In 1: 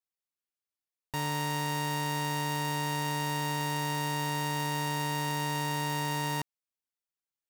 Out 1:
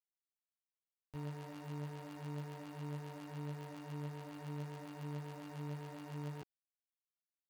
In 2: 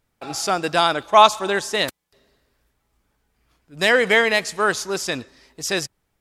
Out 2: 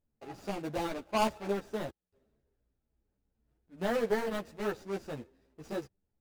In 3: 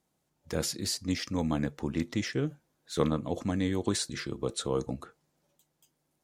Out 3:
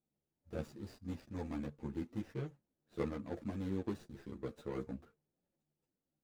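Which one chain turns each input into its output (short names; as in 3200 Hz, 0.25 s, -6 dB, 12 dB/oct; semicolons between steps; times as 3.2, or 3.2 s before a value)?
median filter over 41 samples; ensemble effect; gain -6 dB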